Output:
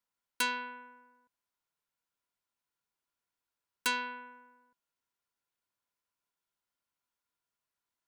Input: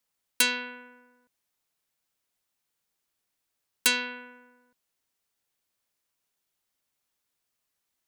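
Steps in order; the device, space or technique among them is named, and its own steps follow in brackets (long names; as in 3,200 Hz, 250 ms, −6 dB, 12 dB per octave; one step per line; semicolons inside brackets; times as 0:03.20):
inside a helmet (high-shelf EQ 4,600 Hz −6 dB; hollow resonant body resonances 1,000/1,400 Hz, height 11 dB, ringing for 45 ms)
level −7 dB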